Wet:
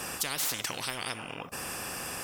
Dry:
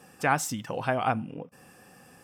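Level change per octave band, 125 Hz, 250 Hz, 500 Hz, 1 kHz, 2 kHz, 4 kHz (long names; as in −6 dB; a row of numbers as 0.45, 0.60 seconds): −10.5, −10.0, −10.0, −10.5, −4.0, +9.0 decibels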